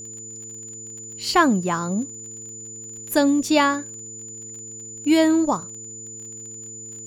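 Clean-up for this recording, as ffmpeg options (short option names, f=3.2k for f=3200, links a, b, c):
-af "adeclick=t=4,bandreject=f=113.1:t=h:w=4,bandreject=f=226.2:t=h:w=4,bandreject=f=339.3:t=h:w=4,bandreject=f=452.4:t=h:w=4,bandreject=f=7k:w=30"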